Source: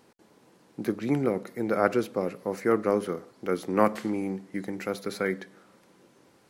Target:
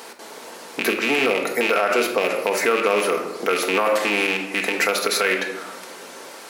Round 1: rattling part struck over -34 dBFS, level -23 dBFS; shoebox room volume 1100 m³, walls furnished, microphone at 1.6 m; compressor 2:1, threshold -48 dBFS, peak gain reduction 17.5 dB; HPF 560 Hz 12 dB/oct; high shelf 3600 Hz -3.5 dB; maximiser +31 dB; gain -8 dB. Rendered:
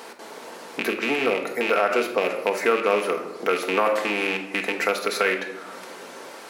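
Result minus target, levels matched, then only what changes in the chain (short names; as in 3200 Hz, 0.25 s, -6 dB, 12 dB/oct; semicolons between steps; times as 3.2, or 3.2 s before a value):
8000 Hz band -6.0 dB; compressor: peak gain reduction +4.5 dB
change: compressor 2:1, threshold -39 dBFS, peak gain reduction 13 dB; change: high shelf 3600 Hz +3 dB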